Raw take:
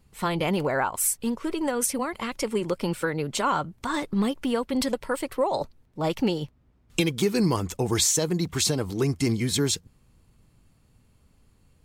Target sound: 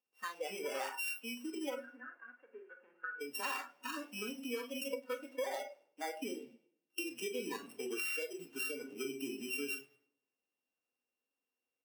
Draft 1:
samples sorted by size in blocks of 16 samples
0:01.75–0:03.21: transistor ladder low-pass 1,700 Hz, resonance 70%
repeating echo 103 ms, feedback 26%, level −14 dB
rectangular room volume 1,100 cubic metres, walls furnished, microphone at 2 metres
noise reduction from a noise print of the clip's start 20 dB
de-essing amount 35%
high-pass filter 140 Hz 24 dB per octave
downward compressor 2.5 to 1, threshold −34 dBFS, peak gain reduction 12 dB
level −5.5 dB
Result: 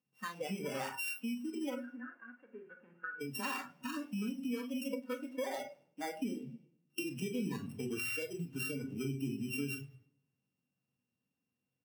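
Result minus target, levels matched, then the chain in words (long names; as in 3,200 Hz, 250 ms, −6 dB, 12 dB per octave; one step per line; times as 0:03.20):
125 Hz band +20.0 dB
samples sorted by size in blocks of 16 samples
0:01.75–0:03.21: transistor ladder low-pass 1,700 Hz, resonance 70%
repeating echo 103 ms, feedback 26%, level −14 dB
rectangular room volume 1,100 cubic metres, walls furnished, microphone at 2 metres
noise reduction from a noise print of the clip's start 20 dB
de-essing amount 35%
high-pass filter 360 Hz 24 dB per octave
downward compressor 2.5 to 1, threshold −34 dBFS, peak gain reduction 11 dB
level −5.5 dB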